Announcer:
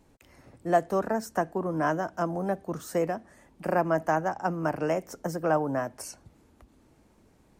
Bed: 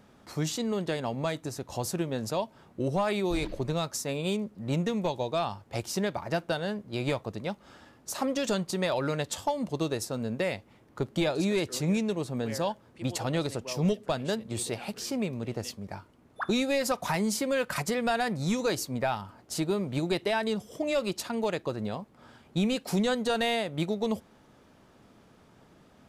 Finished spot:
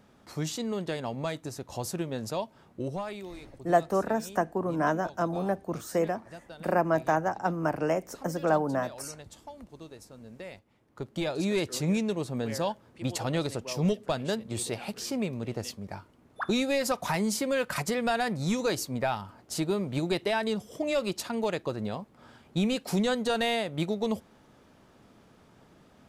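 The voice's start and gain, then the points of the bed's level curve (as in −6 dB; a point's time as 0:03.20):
3.00 s, 0.0 dB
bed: 0:02.76 −2 dB
0:03.42 −16.5 dB
0:10.17 −16.5 dB
0:11.56 0 dB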